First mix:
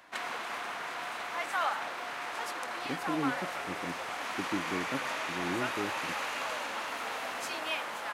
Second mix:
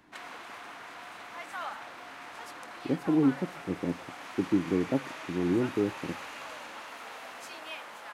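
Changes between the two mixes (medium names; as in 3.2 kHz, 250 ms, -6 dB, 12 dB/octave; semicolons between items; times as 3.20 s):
speech +9.0 dB; background -7.0 dB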